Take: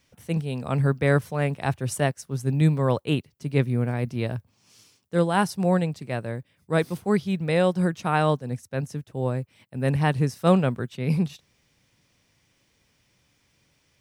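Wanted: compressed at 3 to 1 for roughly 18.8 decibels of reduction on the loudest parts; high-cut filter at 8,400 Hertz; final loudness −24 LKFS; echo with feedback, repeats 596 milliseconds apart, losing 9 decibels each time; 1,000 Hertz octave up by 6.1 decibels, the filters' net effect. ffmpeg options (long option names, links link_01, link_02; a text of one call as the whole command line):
ffmpeg -i in.wav -af "lowpass=8400,equalizer=frequency=1000:width_type=o:gain=8,acompressor=threshold=-39dB:ratio=3,aecho=1:1:596|1192|1788|2384:0.355|0.124|0.0435|0.0152,volume=15dB" out.wav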